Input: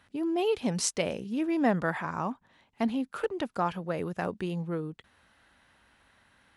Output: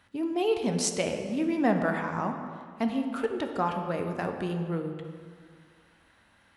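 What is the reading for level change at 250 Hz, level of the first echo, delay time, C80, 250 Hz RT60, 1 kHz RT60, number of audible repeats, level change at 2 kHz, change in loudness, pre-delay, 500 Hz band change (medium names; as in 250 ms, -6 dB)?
+1.5 dB, no echo, no echo, 7.5 dB, 2.1 s, 1.9 s, no echo, +1.0 dB, +1.5 dB, 9 ms, +1.5 dB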